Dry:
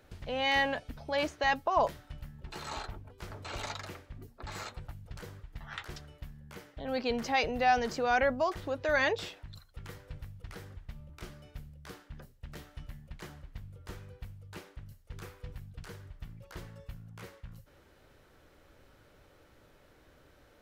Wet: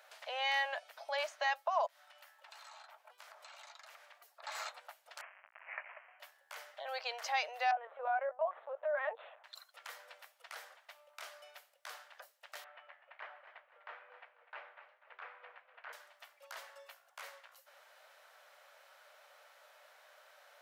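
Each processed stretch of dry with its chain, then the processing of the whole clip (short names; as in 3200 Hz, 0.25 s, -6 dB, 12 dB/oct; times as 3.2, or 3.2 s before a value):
1.86–4.43 HPF 570 Hz + compressor 12:1, threshold -55 dBFS
5.21–6.2 half-waves squared off + Bessel high-pass 2100 Hz, order 4 + inverted band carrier 3700 Hz
7.71–9.44 LPF 1200 Hz + LPC vocoder at 8 kHz pitch kept
12.64–15.93 LPF 2500 Hz 24 dB/oct + warbling echo 0.247 s, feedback 38%, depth 74 cents, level -12.5 dB
whole clip: elliptic high-pass 610 Hz, stop band 60 dB; compressor 1.5:1, threshold -51 dBFS; gain +4.5 dB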